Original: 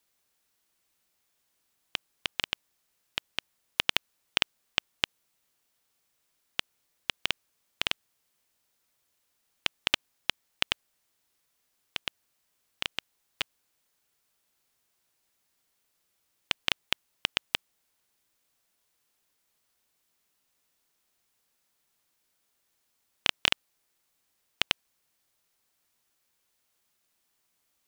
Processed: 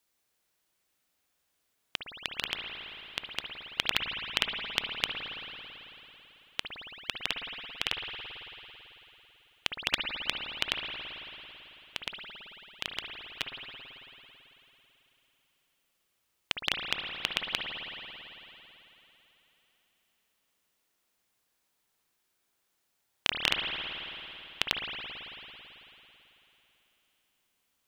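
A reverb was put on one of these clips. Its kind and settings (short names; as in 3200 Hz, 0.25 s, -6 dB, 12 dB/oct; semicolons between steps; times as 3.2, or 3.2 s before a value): spring tank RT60 3.5 s, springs 55 ms, chirp 25 ms, DRR 1 dB; gain -2.5 dB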